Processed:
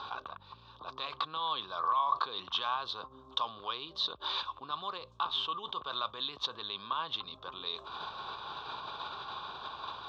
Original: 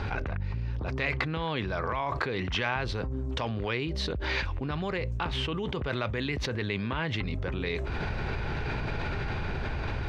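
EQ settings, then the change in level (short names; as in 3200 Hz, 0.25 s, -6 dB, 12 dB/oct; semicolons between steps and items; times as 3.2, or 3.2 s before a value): double band-pass 2000 Hz, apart 1.7 oct; +7.5 dB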